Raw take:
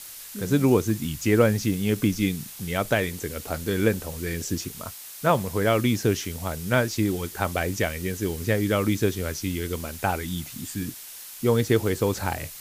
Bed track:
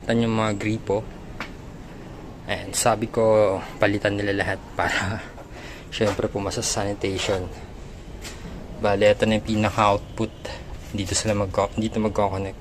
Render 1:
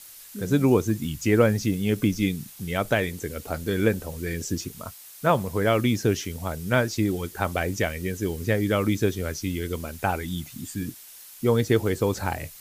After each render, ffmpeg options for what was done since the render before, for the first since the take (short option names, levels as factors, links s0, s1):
-af "afftdn=nr=6:nf=-41"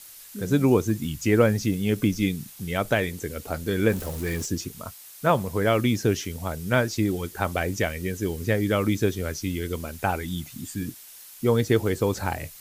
-filter_complex "[0:a]asettb=1/sr,asplit=3[s0][s1][s2];[s0]atrim=end=3.894[s3];[s1]atrim=start=3.89:end=4.46,asetpts=PTS-STARTPTS,afade=t=in:d=0.004:c=qsin,afade=t=out:st=0.566:d=0.004:c=qsin,aeval=exprs='val(0)+0.5*0.0188*sgn(val(0))':c=same[s4];[s2]atrim=start=4.456[s5];[s3][s4]acrossfade=d=0.004:c1=hsin:c2=qsin[s6];[s6][s5]acrossfade=d=0.004:c1=qsin:c2=hsin"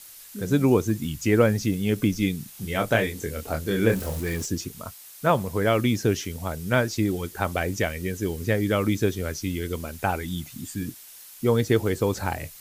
-filter_complex "[0:a]asettb=1/sr,asplit=3[s0][s1][s2];[s0]atrim=end=2.514[s3];[s1]atrim=start=2.51:end=4.2,asetpts=PTS-STARTPTS,afade=t=in:d=0.004:c=qsin,afade=t=out:st=1.686:d=0.004:c=qsin,asplit=2[s4][s5];[s5]adelay=26,volume=0.562[s6];[s4][s6]amix=inputs=2:normalize=0,atrim=end_sample=74529[s7];[s2]atrim=start=4.196[s8];[s3][s7]acrossfade=d=0.004:c1=hsin:c2=qsin[s9];[s9][s8]acrossfade=d=0.004:c1=qsin:c2=hsin"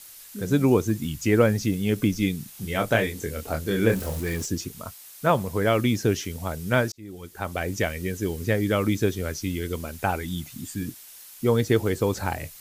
-filter_complex "[0:a]asplit=2[s0][s1];[s0]atrim=end=6.92,asetpts=PTS-STARTPTS,afade=t=out:st=6.916:d=0.004:c=hsin[s2];[s1]atrim=start=6.92,asetpts=PTS-STARTPTS,afade=t=in:d=0.9[s3];[s2][s3]concat=n=2:v=0:a=1"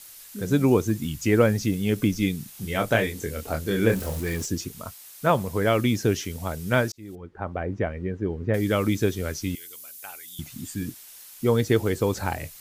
-filter_complex "[0:a]asettb=1/sr,asplit=3[s0][s1][s2];[s0]atrim=end=7.154[s3];[s1]atrim=start=7.15:end=8.54,asetpts=PTS-STARTPTS,afade=t=in:d=0.004:c=qsin,afade=t=out:st=1.386:d=0.004:c=qsin,lowpass=1300[s4];[s2]atrim=start=8.536[s5];[s3][s4]acrossfade=d=0.004:c1=hsin:c2=qsin[s6];[s6][s5]acrossfade=d=0.004:c1=qsin:c2=hsin,asettb=1/sr,asplit=3[s7][s8][s9];[s7]atrim=end=9.554[s10];[s8]atrim=start=9.55:end=10.39,asetpts=PTS-STARTPTS,afade=t=in:d=0.004:c=qsin,afade=t=out:st=0.836:d=0.004:c=qsin,aderivative[s11];[s9]atrim=start=10.386[s12];[s10][s11]acrossfade=d=0.004:c1=hsin:c2=qsin[s13];[s13][s12]acrossfade=d=0.004:c1=qsin:c2=hsin"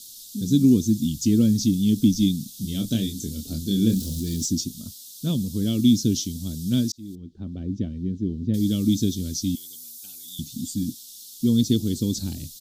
-af "firequalizer=gain_entry='entry(120,0);entry(240,9);entry(440,-14);entry(830,-28);entry(1400,-26);entry(2100,-24);entry(3500,7);entry(5600,7);entry(9900,1)':delay=0.05:min_phase=1"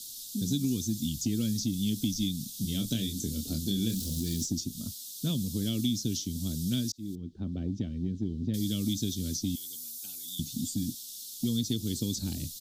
-filter_complex "[0:a]acrossover=split=110|1500[s0][s1][s2];[s0]acompressor=threshold=0.0112:ratio=4[s3];[s1]acompressor=threshold=0.0282:ratio=4[s4];[s2]acompressor=threshold=0.02:ratio=4[s5];[s3][s4][s5]amix=inputs=3:normalize=0"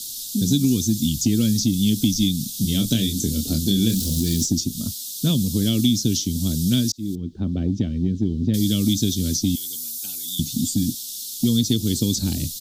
-af "volume=3.35"